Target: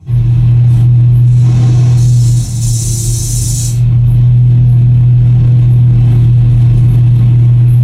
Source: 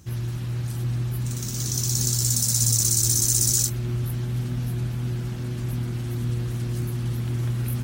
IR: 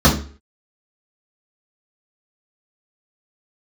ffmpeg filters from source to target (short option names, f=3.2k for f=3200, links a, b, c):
-filter_complex "[0:a]asettb=1/sr,asplit=3[a][b][c];[a]atrim=end=2.614[d];[b]atrim=start=2.61:end=3.82,asetpts=PTS-STARTPTS,afade=t=in:d=0.004:c=qsin,afade=t=out:st=1.206:d=0.004:c=qsin,highshelf=f=3.7k:g=9.5[e];[c]atrim=start=3.816[f];[d][e]acrossfade=d=0.004:c1=hsin:c2=qsin[g];[g][f]acrossfade=d=0.004:c1=qsin:c2=hsin,dynaudnorm=f=310:g=3:m=11.5dB,asettb=1/sr,asplit=3[h][i][j];[h]atrim=end=1.424[k];[i]atrim=start=1.42:end=1.97,asetpts=PTS-STARTPTS,afade=t=in:d=0.004:c=qsin,afade=t=out:st=0.546:d=0.004:c=qsin,asplit=2[l][m];[m]highpass=f=720:p=1,volume=17dB,asoftclip=type=tanh:threshold=-4.5dB[n];[l][n]amix=inputs=2:normalize=0,lowpass=f=1.1k:p=1,volume=-6dB[o];[j]atrim=start=1.966[p];[k][o]acrossfade=d=0.004:c1=hsin:c2=qsin[q];[q][p]acrossfade=d=0.004:c1=qsin:c2=hsin[r];[1:a]atrim=start_sample=2205,atrim=end_sample=3969,asetrate=26460,aresample=44100[s];[r][s]afir=irnorm=-1:irlink=0,alimiter=level_in=-19dB:limit=-1dB:release=50:level=0:latency=1,volume=-1dB"